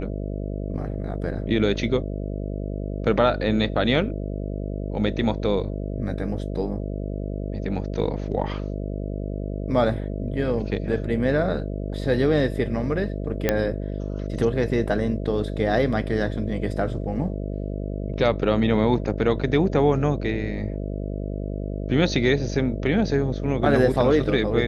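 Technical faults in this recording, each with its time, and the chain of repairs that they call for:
buzz 50 Hz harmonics 13 -29 dBFS
13.49 pop -6 dBFS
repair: de-click; de-hum 50 Hz, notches 13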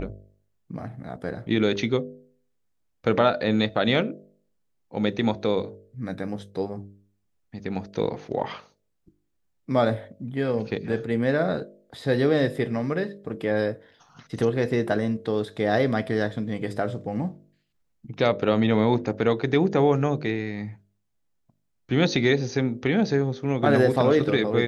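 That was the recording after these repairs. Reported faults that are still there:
none

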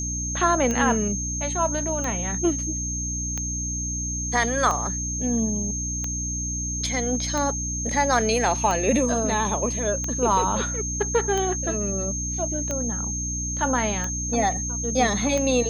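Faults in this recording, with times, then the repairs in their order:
hum 60 Hz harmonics 5 -31 dBFS
tick 45 rpm -14 dBFS
tone 6400 Hz -28 dBFS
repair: de-click; de-hum 60 Hz, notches 5; notch 6400 Hz, Q 30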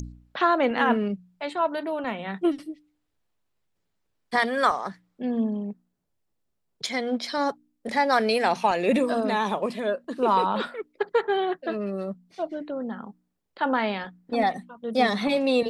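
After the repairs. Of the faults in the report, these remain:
none

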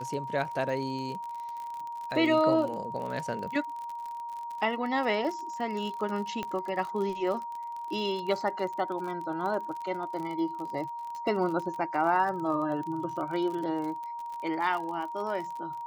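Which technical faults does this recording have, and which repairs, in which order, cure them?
crackle 40/s -35 dBFS
tone 940 Hz -35 dBFS
6.43 pop -20 dBFS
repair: de-click; notch 940 Hz, Q 30

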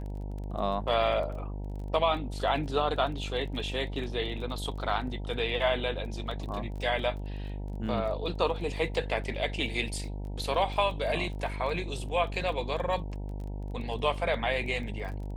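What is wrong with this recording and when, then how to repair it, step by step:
buzz 50 Hz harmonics 19 -36 dBFS
crackle 20/s -39 dBFS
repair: de-click; de-hum 50 Hz, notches 19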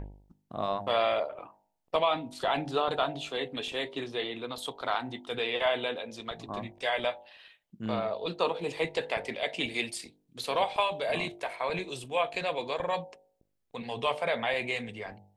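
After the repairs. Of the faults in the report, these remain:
none

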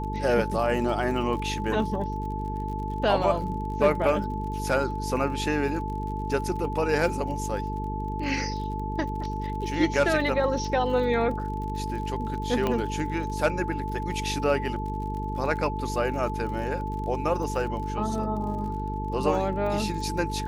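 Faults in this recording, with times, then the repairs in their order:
buzz 50 Hz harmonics 9 -32 dBFS
crackle 42/s -36 dBFS
tone 870 Hz -33 dBFS
12.67 pop -13 dBFS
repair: de-click; notch 870 Hz, Q 30; de-hum 50 Hz, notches 9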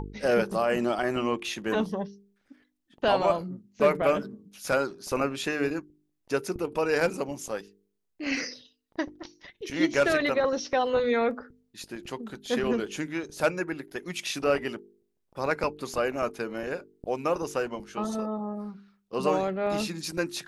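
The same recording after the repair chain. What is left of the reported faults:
12.67 pop

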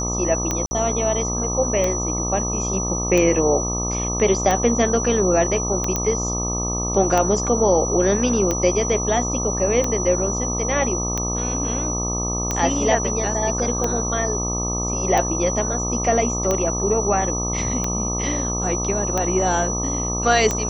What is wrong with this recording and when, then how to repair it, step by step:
buzz 60 Hz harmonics 21 -26 dBFS
tick 45 rpm -8 dBFS
tone 5900 Hz -25 dBFS
0.66–0.71 gap 50 ms
5.96 pop -7 dBFS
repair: de-click; de-hum 60 Hz, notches 21; notch 5900 Hz, Q 30; interpolate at 0.66, 50 ms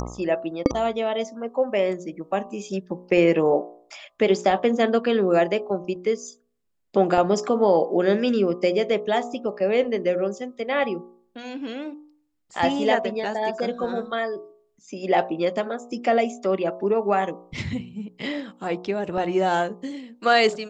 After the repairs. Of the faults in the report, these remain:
none

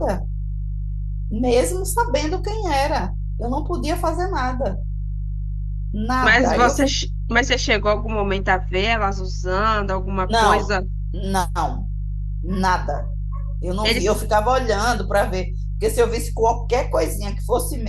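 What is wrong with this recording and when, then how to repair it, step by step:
hum 50 Hz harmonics 3 -25 dBFS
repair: de-hum 50 Hz, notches 3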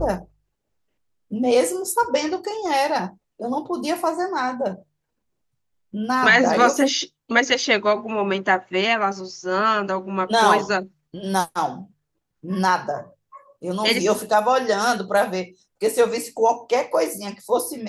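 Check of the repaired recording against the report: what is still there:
none

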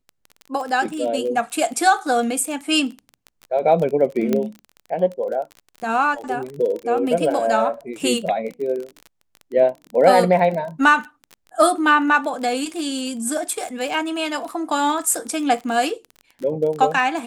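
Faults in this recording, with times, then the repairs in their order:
crackle 26/s -27 dBFS
4.33 pop -8 dBFS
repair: de-click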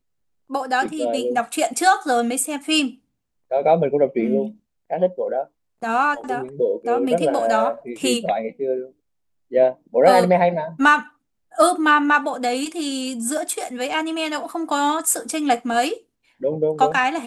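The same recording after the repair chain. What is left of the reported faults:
none

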